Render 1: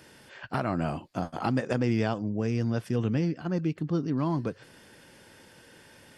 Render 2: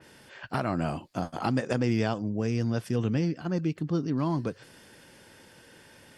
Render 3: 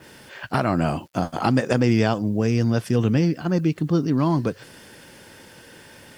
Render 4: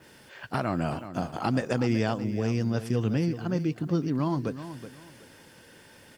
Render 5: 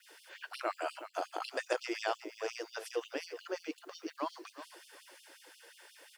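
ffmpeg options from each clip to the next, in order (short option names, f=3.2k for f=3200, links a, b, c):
-af "adynamicequalizer=threshold=0.00398:dfrequency=3600:dqfactor=0.7:tfrequency=3600:tqfactor=0.7:attack=5:release=100:ratio=0.375:range=2:mode=boostabove:tftype=highshelf"
-af "acrusher=bits=10:mix=0:aa=0.000001,volume=7.5dB"
-af "aecho=1:1:374|748|1122:0.251|0.0628|0.0157,volume=-7dB"
-af "afftfilt=real='re*gte(b*sr/1024,290*pow(2800/290,0.5+0.5*sin(2*PI*5.6*pts/sr)))':imag='im*gte(b*sr/1024,290*pow(2800/290,0.5+0.5*sin(2*PI*5.6*pts/sr)))':win_size=1024:overlap=0.75,volume=-2dB"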